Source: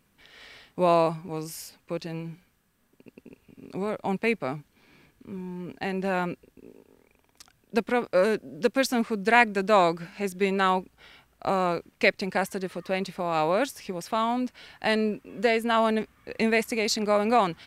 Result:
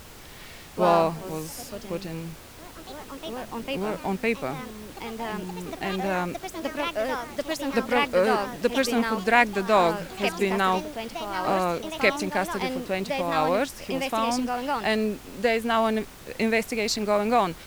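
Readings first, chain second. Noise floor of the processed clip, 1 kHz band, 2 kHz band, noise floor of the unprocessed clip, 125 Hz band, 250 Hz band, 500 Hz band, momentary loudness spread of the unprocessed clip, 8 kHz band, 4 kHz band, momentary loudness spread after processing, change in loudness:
-45 dBFS, +1.5 dB, +1.0 dB, -67 dBFS, +0.5 dB, +1.0 dB, +0.5 dB, 15 LU, +3.0 dB, +2.5 dB, 15 LU, +0.5 dB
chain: echoes that change speed 0.117 s, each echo +3 st, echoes 3, each echo -6 dB; added noise pink -45 dBFS

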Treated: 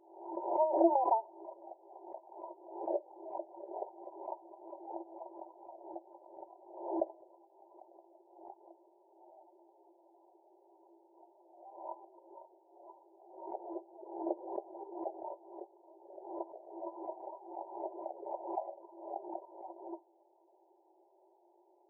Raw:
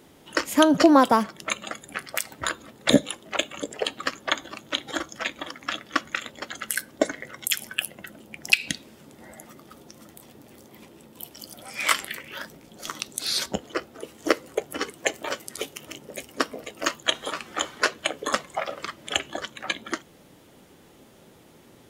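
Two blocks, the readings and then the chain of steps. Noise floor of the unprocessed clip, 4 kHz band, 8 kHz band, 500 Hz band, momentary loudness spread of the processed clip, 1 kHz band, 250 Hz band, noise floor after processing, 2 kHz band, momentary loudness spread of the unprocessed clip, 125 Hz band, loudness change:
-53 dBFS, under -40 dB, under -40 dB, -9.5 dB, 21 LU, -9.5 dB, -16.5 dB, -68 dBFS, under -40 dB, 17 LU, under -35 dB, -13.0 dB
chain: fixed phaser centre 470 Hz, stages 6; FFT band-pass 330–1000 Hz; backwards sustainer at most 77 dB/s; gain -7 dB

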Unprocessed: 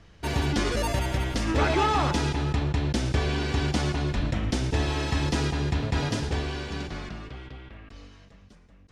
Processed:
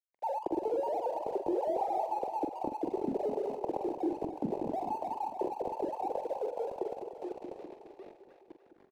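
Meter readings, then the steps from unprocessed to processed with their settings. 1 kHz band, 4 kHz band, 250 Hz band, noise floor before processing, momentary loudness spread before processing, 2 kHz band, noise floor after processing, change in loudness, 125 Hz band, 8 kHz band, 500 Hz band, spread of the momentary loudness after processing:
-3.0 dB, under -25 dB, -8.5 dB, -53 dBFS, 14 LU, under -25 dB, -62 dBFS, -8.0 dB, -28.0 dB, under -25 dB, -1.5 dB, 10 LU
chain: sine-wave speech; elliptic low-pass 870 Hz, stop band 40 dB; low shelf 280 Hz +8 dB; compressor, threshold -31 dBFS, peak gain reduction 16.5 dB; crossover distortion -56 dBFS; doubler 45 ms -8.5 dB; on a send: split-band echo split 510 Hz, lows 0.209 s, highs 0.297 s, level -8 dB

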